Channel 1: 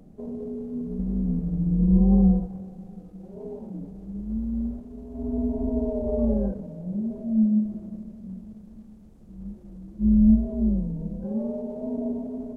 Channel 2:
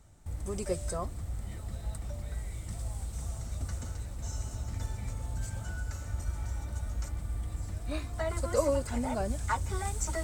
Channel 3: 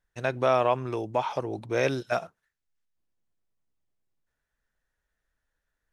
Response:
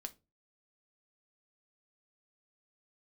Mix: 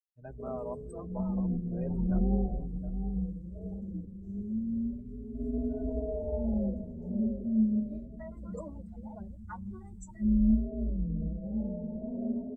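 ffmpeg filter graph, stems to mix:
-filter_complex "[0:a]adelay=200,volume=-3.5dB,asplit=2[a][b];[b]volume=-8.5dB[c];[1:a]acrusher=bits=6:mix=0:aa=0.5,volume=-10.5dB[d];[2:a]equalizer=f=3.7k:w=0.49:g=-12,volume=-12dB,asplit=2[e][f];[f]volume=-9dB[g];[c][g]amix=inputs=2:normalize=0,aecho=0:1:720|1440|2160|2880:1|0.27|0.0729|0.0197[h];[a][d][e][h]amix=inputs=4:normalize=0,afftdn=nr=28:nf=-40,asplit=2[i][j];[j]adelay=4.8,afreqshift=0.38[k];[i][k]amix=inputs=2:normalize=1"

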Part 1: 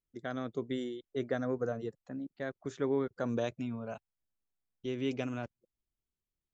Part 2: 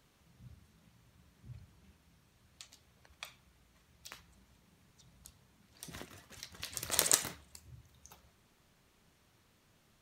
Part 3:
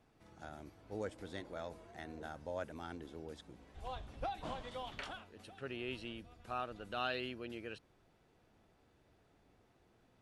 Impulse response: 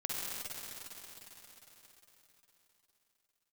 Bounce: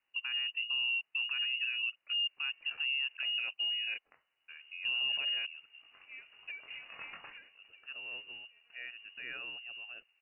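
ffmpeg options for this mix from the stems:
-filter_complex "[0:a]volume=2.5dB[a];[1:a]flanger=delay=20:depth=2.3:speed=0.37,volume=-8.5dB[b];[2:a]adelay=2250,volume=-7dB,asplit=3[c][d][e];[c]atrim=end=3.17,asetpts=PTS-STARTPTS,afade=t=out:st=3.166:d=0.004:c=hsin[f];[d]atrim=start=3.17:end=4.48,asetpts=PTS-STARTPTS,volume=0[g];[e]atrim=start=4.48,asetpts=PTS-STARTPTS,afade=t=in:d=0.004:c=hsin[h];[f][g][h]concat=n=3:v=0:a=1[i];[a][i]amix=inputs=2:normalize=0,equalizer=f=290:t=o:w=1.3:g=10,alimiter=level_in=3dB:limit=-24dB:level=0:latency=1:release=22,volume=-3dB,volume=0dB[j];[b][j]amix=inputs=2:normalize=0,highpass=f=210:w=0.5412,highpass=f=210:w=1.3066,lowpass=f=2.6k:t=q:w=0.5098,lowpass=f=2.6k:t=q:w=0.6013,lowpass=f=2.6k:t=q:w=0.9,lowpass=f=2.6k:t=q:w=2.563,afreqshift=-3100"

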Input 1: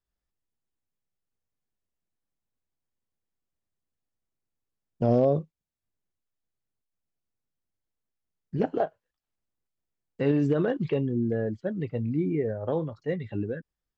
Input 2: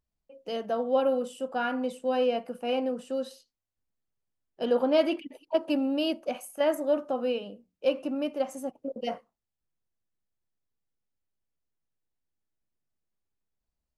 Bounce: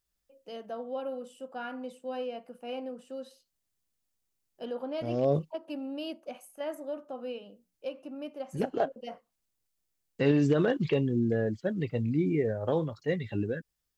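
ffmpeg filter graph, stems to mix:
-filter_complex "[0:a]highshelf=f=2.8k:g=11.5,volume=-0.5dB[a];[1:a]alimiter=limit=-18dB:level=0:latency=1:release=360,volume=-9dB,asplit=2[b][c];[c]apad=whole_len=616238[d];[a][d]sidechaincompress=threshold=-46dB:ratio=10:attack=24:release=281[e];[e][b]amix=inputs=2:normalize=0"

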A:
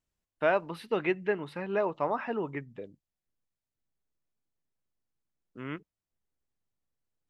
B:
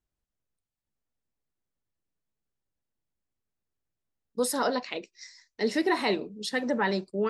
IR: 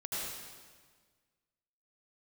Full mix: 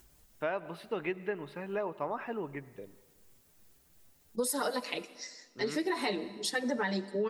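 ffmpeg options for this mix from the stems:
-filter_complex "[0:a]volume=-5dB,asplit=3[a][b][c];[b]volume=-21dB[d];[1:a]highshelf=f=7.1k:g=9.5,acompressor=mode=upward:threshold=-42dB:ratio=2.5,asplit=2[e][f];[f]adelay=5.6,afreqshift=2.7[g];[e][g]amix=inputs=2:normalize=1,volume=1.5dB,asplit=2[h][i];[i]volume=-21dB[j];[c]apad=whole_len=322166[k];[h][k]sidechaincompress=threshold=-40dB:ratio=8:attack=16:release=555[l];[2:a]atrim=start_sample=2205[m];[d][j]amix=inputs=2:normalize=0[n];[n][m]afir=irnorm=-1:irlink=0[o];[a][l][o]amix=inputs=3:normalize=0,acompressor=threshold=-28dB:ratio=10"

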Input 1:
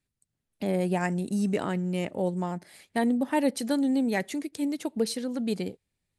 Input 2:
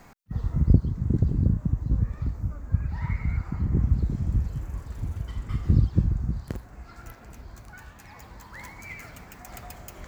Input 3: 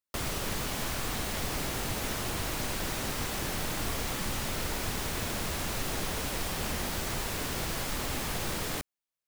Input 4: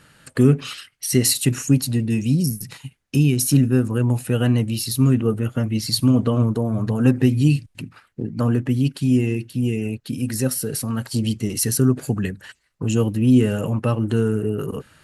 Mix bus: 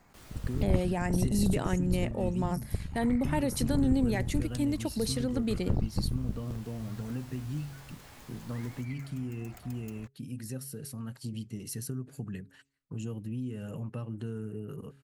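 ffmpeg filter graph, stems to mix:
-filter_complex "[0:a]alimiter=limit=-21.5dB:level=0:latency=1:release=45,volume=-0.5dB,asplit=2[a][b];[1:a]aeval=exprs='0.501*(cos(1*acos(clip(val(0)/0.501,-1,1)))-cos(1*PI/2))+0.0891*(cos(8*acos(clip(val(0)/0.501,-1,1)))-cos(8*PI/2))':c=same,volume=-10.5dB[c];[2:a]flanger=delay=18.5:depth=2.8:speed=0.57,volume=-16.5dB,asplit=3[d][e][f];[d]atrim=end=0.94,asetpts=PTS-STARTPTS,afade=t=out:st=0.936:d=0.004:c=hsin[g];[e]atrim=start=0.94:end=3.75,asetpts=PTS-STARTPTS,volume=0[h];[f]atrim=start=3.75,asetpts=PTS-STARTPTS,afade=t=in:d=0.004:c=hsin[i];[g][h][i]concat=n=3:v=0:a=1[j];[3:a]equalizer=f=150:t=o:w=1.1:g=6.5,bandreject=f=137.3:t=h:w=4,bandreject=f=274.6:t=h:w=4,bandreject=f=411.9:t=h:w=4,acompressor=threshold=-15dB:ratio=6,adelay=100,volume=-17.5dB[k];[b]apad=whole_len=408842[l];[j][l]sidechaincompress=threshold=-43dB:ratio=8:attack=39:release=1010[m];[a][c][m][k]amix=inputs=4:normalize=0"

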